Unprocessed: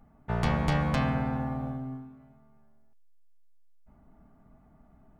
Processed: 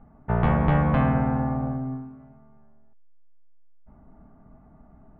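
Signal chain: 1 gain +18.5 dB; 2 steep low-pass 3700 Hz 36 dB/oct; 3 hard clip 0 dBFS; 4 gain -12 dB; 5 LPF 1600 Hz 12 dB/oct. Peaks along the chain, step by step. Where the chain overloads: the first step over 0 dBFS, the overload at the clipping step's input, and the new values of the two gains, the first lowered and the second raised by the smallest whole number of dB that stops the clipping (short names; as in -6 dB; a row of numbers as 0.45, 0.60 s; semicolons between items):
+4.5, +4.5, 0.0, -12.0, -11.5 dBFS; step 1, 4.5 dB; step 1 +13.5 dB, step 4 -7 dB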